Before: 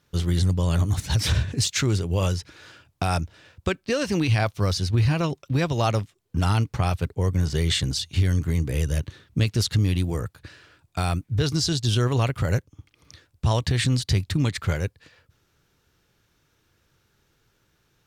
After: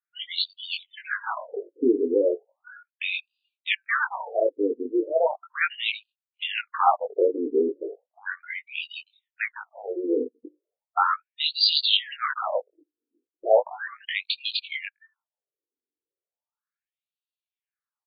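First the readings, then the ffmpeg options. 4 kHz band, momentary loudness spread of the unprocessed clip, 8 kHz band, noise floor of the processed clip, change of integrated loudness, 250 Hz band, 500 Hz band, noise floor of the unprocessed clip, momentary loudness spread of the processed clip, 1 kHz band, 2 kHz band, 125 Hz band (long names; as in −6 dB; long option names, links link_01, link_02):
+3.0 dB, 7 LU, below −40 dB, below −85 dBFS, −1.5 dB, −4.5 dB, +5.0 dB, −68 dBFS, 13 LU, +4.0 dB, +4.0 dB, below −40 dB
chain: -filter_complex "[0:a]afftdn=noise_reduction=35:noise_floor=-40,afftfilt=real='re*between(b*sr/4096,190,6200)':imag='im*between(b*sr/4096,190,6200)':win_size=4096:overlap=0.75,acrossover=split=780|920[link_01][link_02][link_03];[link_01]asoftclip=type=tanh:threshold=-24.5dB[link_04];[link_02]acontrast=81[link_05];[link_04][link_05][link_03]amix=inputs=3:normalize=0,asplit=2[link_06][link_07];[link_07]adelay=20,volume=-3.5dB[link_08];[link_06][link_08]amix=inputs=2:normalize=0,asplit=2[link_09][link_10];[link_10]asoftclip=type=hard:threshold=-21dB,volume=-11dB[link_11];[link_09][link_11]amix=inputs=2:normalize=0,afftfilt=real='re*between(b*sr/1024,340*pow(3500/340,0.5+0.5*sin(2*PI*0.36*pts/sr))/1.41,340*pow(3500/340,0.5+0.5*sin(2*PI*0.36*pts/sr))*1.41)':imag='im*between(b*sr/1024,340*pow(3500/340,0.5+0.5*sin(2*PI*0.36*pts/sr))/1.41,340*pow(3500/340,0.5+0.5*sin(2*PI*0.36*pts/sr))*1.41)':win_size=1024:overlap=0.75,volume=7dB"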